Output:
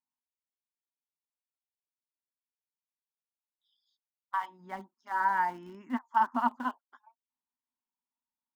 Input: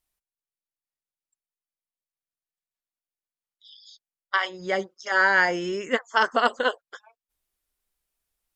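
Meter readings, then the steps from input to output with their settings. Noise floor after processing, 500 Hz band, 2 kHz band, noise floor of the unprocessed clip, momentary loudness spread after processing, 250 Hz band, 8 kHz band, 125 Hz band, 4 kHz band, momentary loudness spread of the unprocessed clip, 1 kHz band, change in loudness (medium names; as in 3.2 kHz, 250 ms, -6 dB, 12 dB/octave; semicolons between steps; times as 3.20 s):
under -85 dBFS, -20.5 dB, -15.5 dB, under -85 dBFS, 16 LU, -4.0 dB, under -15 dB, under -10 dB, under -20 dB, 9 LU, -3.0 dB, -8.0 dB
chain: two resonant band-passes 480 Hz, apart 1.9 oct; in parallel at -10 dB: small samples zeroed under -41.5 dBFS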